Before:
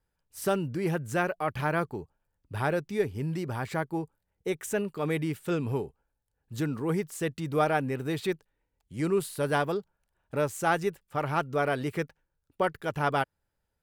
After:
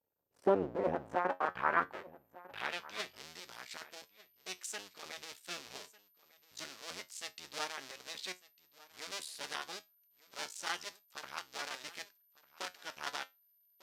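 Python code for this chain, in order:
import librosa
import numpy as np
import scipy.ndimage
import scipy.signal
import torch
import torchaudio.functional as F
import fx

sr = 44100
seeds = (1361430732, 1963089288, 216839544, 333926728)

y = fx.cycle_switch(x, sr, every=2, mode='muted')
y = y + 10.0 ** (-59.0 / 20.0) * np.sin(2.0 * np.pi * 13000.0 * np.arange(len(y)) / sr)
y = fx.filter_sweep_bandpass(y, sr, from_hz=510.0, to_hz=5200.0, start_s=0.64, end_s=3.26, q=1.4)
y = fx.high_shelf(y, sr, hz=5900.0, db=-5.0)
y = fx.comb_fb(y, sr, f0_hz=91.0, decay_s=0.19, harmonics='all', damping=0.0, mix_pct=60)
y = y + 10.0 ** (-20.5 / 20.0) * np.pad(y, (int(1199 * sr / 1000.0), 0))[:len(y)]
y = y * librosa.db_to_amplitude(8.5)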